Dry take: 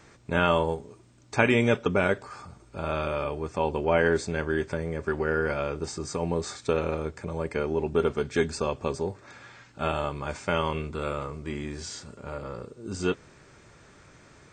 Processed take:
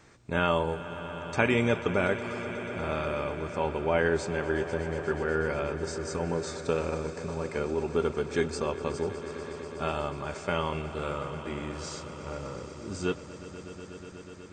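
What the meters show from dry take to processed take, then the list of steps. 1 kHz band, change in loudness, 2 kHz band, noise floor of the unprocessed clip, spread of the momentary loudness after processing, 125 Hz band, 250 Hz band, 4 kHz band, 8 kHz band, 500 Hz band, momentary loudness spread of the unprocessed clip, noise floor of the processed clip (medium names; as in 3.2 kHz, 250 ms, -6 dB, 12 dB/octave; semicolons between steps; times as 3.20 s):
-2.0 dB, -2.5 dB, -2.0 dB, -55 dBFS, 13 LU, -2.0 dB, -2.0 dB, -2.0 dB, -2.0 dB, -2.0 dB, 15 LU, -45 dBFS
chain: echo with a slow build-up 122 ms, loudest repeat 5, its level -16.5 dB; trim -3 dB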